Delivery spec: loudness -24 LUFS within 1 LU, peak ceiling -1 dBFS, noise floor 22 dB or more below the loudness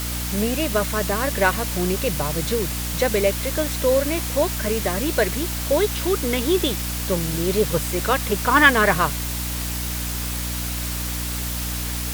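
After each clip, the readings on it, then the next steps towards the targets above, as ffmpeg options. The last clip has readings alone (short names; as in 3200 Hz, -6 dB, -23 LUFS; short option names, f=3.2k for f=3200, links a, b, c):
hum 60 Hz; harmonics up to 300 Hz; hum level -26 dBFS; noise floor -27 dBFS; noise floor target -44 dBFS; loudness -21.5 LUFS; peak -1.5 dBFS; loudness target -24.0 LUFS
-> -af "bandreject=f=60:t=h:w=6,bandreject=f=120:t=h:w=6,bandreject=f=180:t=h:w=6,bandreject=f=240:t=h:w=6,bandreject=f=300:t=h:w=6"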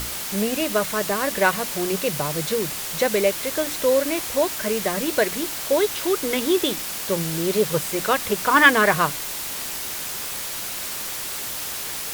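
hum none; noise floor -30 dBFS; noise floor target -44 dBFS
-> -af "afftdn=nr=14:nf=-30"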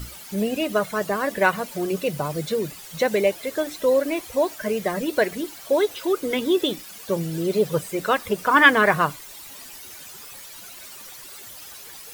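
noise floor -41 dBFS; noise floor target -45 dBFS
-> -af "afftdn=nr=6:nf=-41"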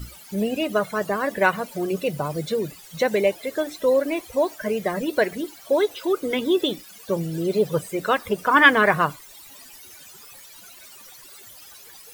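noise floor -46 dBFS; loudness -22.5 LUFS; peak -1.5 dBFS; loudness target -24.0 LUFS
-> -af "volume=-1.5dB"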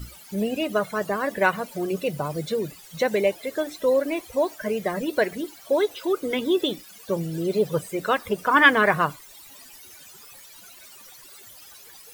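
loudness -24.0 LUFS; peak -3.0 dBFS; noise floor -47 dBFS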